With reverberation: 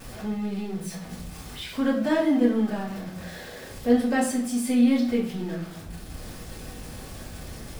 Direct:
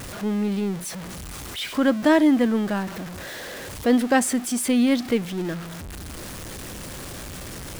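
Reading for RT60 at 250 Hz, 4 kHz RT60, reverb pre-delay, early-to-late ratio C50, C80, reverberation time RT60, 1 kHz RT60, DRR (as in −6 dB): 0.80 s, 0.45 s, 3 ms, 7.0 dB, 10.5 dB, 0.60 s, 0.50 s, −7.5 dB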